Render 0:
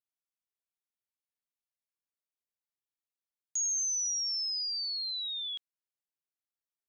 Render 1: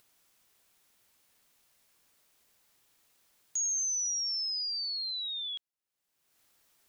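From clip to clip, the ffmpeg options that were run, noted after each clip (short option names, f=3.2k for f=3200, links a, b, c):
-af "acompressor=mode=upward:threshold=-48dB:ratio=2.5"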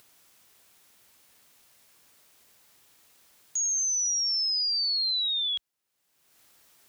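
-af "highpass=44,alimiter=level_in=8.5dB:limit=-24dB:level=0:latency=1,volume=-8.5dB,volume=8.5dB"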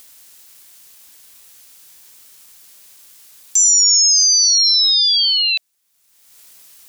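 -af "aeval=exprs='val(0)*sin(2*PI*670*n/s)':c=same,highshelf=f=9.7k:g=-8,crystalizer=i=4:c=0,volume=8dB"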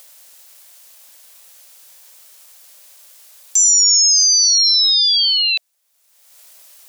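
-af "lowshelf=f=420:t=q:w=3:g=-10"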